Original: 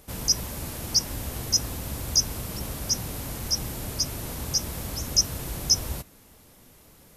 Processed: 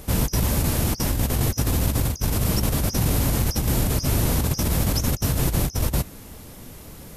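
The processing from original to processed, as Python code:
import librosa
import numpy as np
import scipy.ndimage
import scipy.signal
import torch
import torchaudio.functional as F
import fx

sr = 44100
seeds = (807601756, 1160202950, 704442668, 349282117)

y = fx.low_shelf(x, sr, hz=320.0, db=6.0)
y = fx.over_compress(y, sr, threshold_db=-29.0, ratio=-0.5)
y = F.gain(torch.from_numpy(y), 7.5).numpy()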